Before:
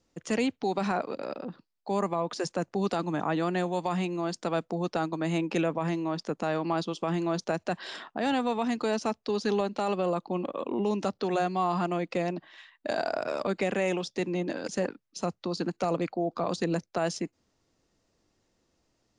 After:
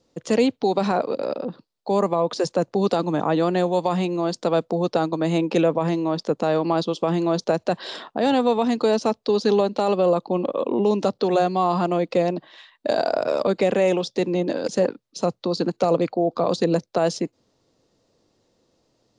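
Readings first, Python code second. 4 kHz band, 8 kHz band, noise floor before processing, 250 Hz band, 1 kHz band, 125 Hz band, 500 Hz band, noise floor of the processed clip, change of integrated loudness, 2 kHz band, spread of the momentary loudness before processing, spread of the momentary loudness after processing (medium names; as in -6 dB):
+7.0 dB, +4.0 dB, -76 dBFS, +7.0 dB, +6.5 dB, +6.5 dB, +9.5 dB, -70 dBFS, +8.0 dB, +2.5 dB, 6 LU, 5 LU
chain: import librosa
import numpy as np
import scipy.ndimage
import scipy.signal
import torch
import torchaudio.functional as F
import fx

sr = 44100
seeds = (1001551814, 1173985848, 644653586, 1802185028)

y = fx.graphic_eq(x, sr, hz=(125, 250, 500, 1000, 4000, 8000), db=(8, 5, 11, 5, 9, 3))
y = y * 10.0 ** (-1.5 / 20.0)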